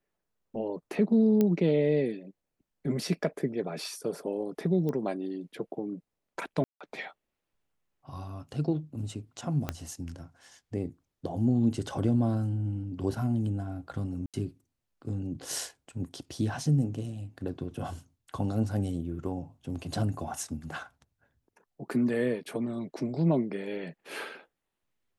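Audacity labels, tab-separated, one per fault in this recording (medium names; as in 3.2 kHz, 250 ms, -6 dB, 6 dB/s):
1.410000	1.410000	pop -14 dBFS
4.890000	4.890000	pop -22 dBFS
6.640000	6.810000	dropout 166 ms
9.690000	9.690000	pop -16 dBFS
14.260000	14.340000	dropout 77 ms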